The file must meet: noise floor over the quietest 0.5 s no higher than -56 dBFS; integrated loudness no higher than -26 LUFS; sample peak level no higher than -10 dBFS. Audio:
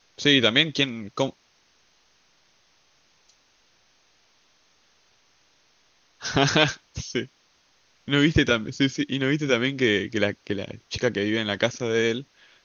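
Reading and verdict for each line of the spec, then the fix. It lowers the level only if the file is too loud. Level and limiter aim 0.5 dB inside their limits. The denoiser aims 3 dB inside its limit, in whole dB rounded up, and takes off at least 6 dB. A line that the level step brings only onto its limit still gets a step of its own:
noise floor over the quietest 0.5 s -63 dBFS: OK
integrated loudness -23.5 LUFS: fail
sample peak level -2.5 dBFS: fail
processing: gain -3 dB; limiter -10.5 dBFS

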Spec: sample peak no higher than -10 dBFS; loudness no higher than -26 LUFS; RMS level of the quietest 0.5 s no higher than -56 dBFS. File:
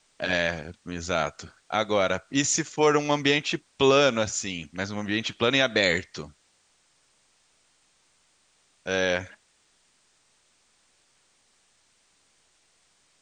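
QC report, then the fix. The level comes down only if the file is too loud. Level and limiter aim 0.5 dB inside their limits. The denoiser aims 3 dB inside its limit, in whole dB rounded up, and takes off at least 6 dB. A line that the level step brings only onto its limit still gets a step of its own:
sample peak -7.5 dBFS: fail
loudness -25.0 LUFS: fail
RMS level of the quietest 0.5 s -66 dBFS: OK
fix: gain -1.5 dB; limiter -10.5 dBFS

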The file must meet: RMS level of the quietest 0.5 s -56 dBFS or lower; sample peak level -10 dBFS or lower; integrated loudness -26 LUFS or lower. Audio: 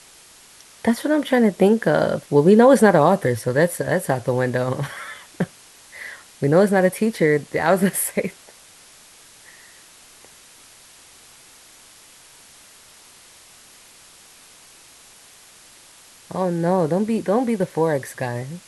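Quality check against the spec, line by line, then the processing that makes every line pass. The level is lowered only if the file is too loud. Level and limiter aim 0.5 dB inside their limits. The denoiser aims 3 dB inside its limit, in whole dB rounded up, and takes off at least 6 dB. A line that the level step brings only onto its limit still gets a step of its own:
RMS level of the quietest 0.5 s -48 dBFS: fail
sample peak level -2.5 dBFS: fail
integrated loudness -19.5 LUFS: fail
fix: denoiser 6 dB, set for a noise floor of -48 dBFS; gain -7 dB; limiter -10.5 dBFS

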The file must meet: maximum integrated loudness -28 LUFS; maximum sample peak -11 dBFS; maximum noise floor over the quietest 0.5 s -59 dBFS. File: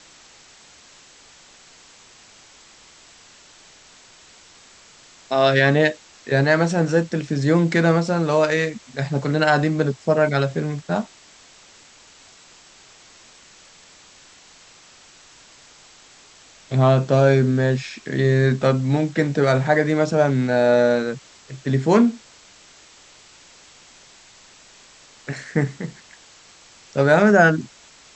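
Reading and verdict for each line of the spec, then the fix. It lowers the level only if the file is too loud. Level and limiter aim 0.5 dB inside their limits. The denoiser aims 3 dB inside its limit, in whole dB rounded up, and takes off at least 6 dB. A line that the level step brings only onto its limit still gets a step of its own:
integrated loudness -19.0 LUFS: fail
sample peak -4.0 dBFS: fail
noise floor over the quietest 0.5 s -49 dBFS: fail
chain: denoiser 6 dB, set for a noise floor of -49 dBFS; gain -9.5 dB

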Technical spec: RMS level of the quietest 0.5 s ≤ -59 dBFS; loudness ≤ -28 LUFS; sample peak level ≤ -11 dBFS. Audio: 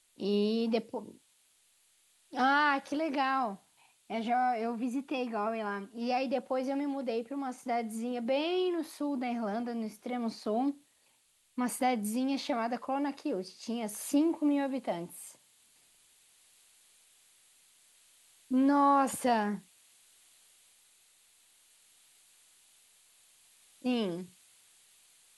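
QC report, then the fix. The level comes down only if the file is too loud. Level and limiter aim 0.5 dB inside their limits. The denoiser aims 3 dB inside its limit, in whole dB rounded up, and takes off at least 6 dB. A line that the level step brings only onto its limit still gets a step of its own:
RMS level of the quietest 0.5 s -69 dBFS: OK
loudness -32.0 LUFS: OK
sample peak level -16.0 dBFS: OK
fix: none

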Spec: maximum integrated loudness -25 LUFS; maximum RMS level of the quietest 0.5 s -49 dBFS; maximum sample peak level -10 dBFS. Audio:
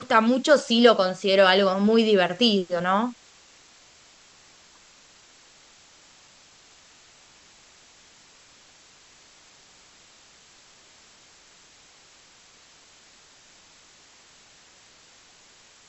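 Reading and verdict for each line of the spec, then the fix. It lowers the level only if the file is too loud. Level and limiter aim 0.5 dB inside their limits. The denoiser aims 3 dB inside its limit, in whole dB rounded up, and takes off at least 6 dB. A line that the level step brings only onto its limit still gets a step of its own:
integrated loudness -20.0 LUFS: fail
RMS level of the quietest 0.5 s -54 dBFS: OK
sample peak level -4.0 dBFS: fail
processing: gain -5.5 dB; limiter -10.5 dBFS

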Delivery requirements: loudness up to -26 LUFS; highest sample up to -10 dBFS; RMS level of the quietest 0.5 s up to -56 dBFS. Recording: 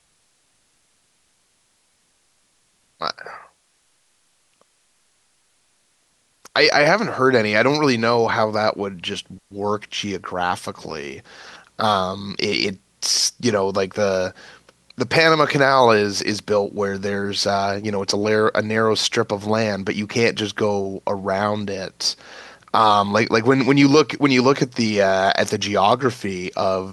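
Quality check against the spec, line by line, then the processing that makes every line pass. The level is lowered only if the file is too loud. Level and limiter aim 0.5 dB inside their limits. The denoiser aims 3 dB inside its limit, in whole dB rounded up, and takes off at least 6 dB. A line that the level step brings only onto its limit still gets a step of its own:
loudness -19.0 LUFS: fail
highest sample -1.5 dBFS: fail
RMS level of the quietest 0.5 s -64 dBFS: OK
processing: gain -7.5 dB; limiter -10.5 dBFS

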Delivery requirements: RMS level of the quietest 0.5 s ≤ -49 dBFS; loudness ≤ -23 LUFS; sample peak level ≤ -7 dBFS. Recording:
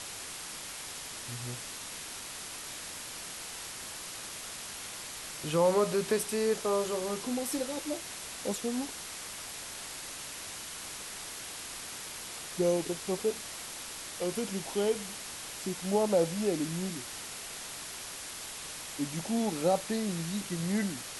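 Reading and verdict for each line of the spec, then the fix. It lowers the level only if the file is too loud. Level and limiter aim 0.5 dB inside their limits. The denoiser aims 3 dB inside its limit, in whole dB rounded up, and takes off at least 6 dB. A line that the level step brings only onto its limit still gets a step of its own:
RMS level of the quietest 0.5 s -42 dBFS: fail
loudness -34.0 LUFS: OK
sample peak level -15.5 dBFS: OK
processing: denoiser 10 dB, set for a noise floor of -42 dBFS

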